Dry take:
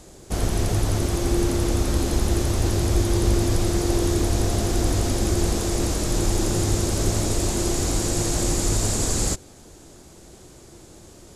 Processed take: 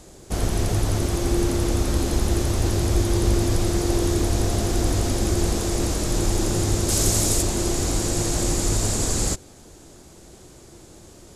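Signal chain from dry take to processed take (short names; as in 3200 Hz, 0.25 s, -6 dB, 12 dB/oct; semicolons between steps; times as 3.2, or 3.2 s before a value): 6.88–7.41 high shelf 3500 Hz -> 5500 Hz +10.5 dB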